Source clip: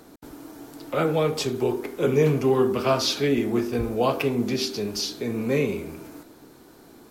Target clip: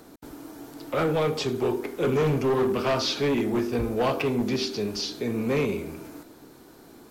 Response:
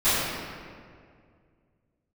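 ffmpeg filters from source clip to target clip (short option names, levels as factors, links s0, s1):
-filter_complex "[0:a]asoftclip=type=hard:threshold=0.106,acrossover=split=5900[s0][s1];[s1]acompressor=threshold=0.00398:ratio=4:attack=1:release=60[s2];[s0][s2]amix=inputs=2:normalize=0"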